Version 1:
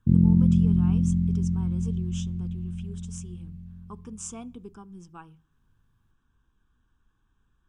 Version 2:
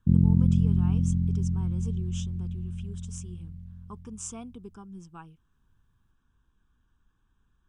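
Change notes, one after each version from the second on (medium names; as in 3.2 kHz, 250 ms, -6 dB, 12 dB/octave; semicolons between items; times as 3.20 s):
reverb: off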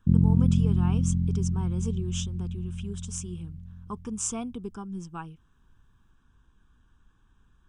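speech +7.5 dB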